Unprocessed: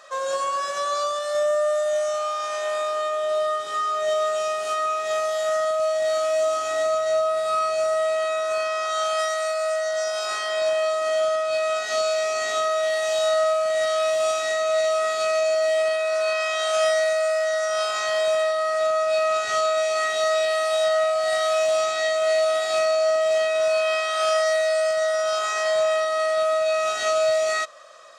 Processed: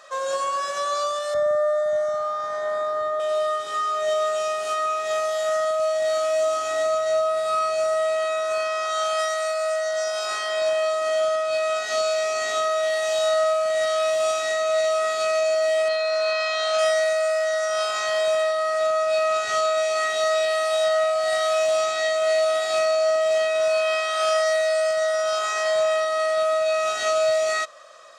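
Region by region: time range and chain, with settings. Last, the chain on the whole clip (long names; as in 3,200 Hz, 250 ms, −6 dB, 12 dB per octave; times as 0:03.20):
0:01.34–0:03.20: Butterworth band-reject 2,700 Hz, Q 2.1 + bass and treble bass +12 dB, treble −14 dB
0:15.88–0:16.77: low-pass filter 6,100 Hz + steady tone 4,200 Hz −33 dBFS
whole clip: no processing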